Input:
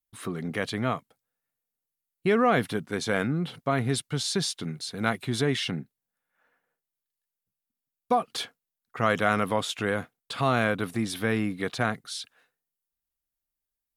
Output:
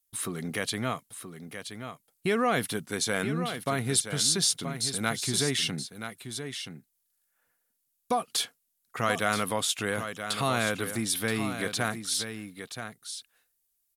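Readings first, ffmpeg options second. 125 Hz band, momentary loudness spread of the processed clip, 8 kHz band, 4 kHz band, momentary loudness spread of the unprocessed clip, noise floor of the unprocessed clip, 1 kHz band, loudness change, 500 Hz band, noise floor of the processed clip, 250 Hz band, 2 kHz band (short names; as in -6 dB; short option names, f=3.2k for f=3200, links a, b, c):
-3.5 dB, 14 LU, +9.5 dB, +3.5 dB, 11 LU, under -85 dBFS, -3.0 dB, -1.0 dB, -3.5 dB, -77 dBFS, -3.5 dB, -1.5 dB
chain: -filter_complex "[0:a]equalizer=f=11k:w=0.33:g=15,asplit=2[a][b];[b]acompressor=threshold=-34dB:ratio=6,volume=0dB[c];[a][c]amix=inputs=2:normalize=0,aecho=1:1:976:0.355,volume=-6dB"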